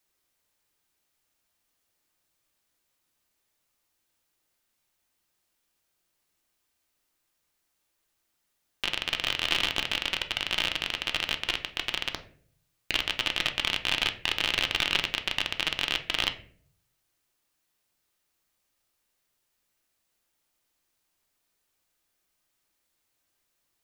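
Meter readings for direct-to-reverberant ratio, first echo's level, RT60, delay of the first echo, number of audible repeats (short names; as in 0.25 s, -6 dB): 6.0 dB, none, 0.55 s, none, none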